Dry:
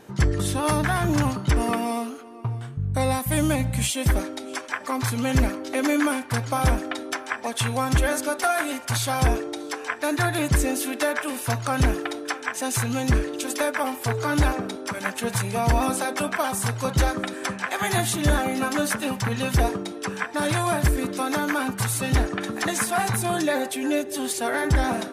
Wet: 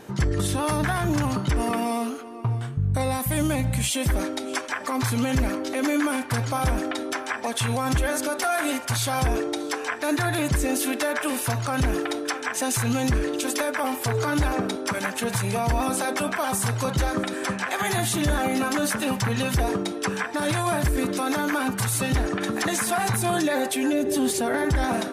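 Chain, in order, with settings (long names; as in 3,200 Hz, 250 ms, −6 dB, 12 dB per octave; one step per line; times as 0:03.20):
0:23.93–0:24.65: low-shelf EQ 440 Hz +11 dB
brickwall limiter −19.5 dBFS, peak gain reduction 11 dB
level +4 dB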